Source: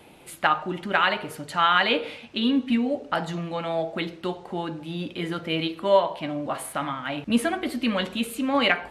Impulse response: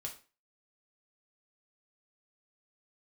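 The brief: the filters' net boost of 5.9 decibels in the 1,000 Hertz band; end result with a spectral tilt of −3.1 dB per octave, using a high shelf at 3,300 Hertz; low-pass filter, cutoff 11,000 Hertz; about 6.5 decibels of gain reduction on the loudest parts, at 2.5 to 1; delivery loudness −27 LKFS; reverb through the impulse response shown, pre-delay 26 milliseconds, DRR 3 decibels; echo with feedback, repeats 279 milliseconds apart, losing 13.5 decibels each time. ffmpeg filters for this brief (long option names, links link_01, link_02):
-filter_complex "[0:a]lowpass=11000,equalizer=frequency=1000:width_type=o:gain=8.5,highshelf=frequency=3300:gain=-7.5,acompressor=threshold=-20dB:ratio=2.5,aecho=1:1:279|558:0.211|0.0444,asplit=2[link_01][link_02];[1:a]atrim=start_sample=2205,adelay=26[link_03];[link_02][link_03]afir=irnorm=-1:irlink=0,volume=-1dB[link_04];[link_01][link_04]amix=inputs=2:normalize=0,volume=-2.5dB"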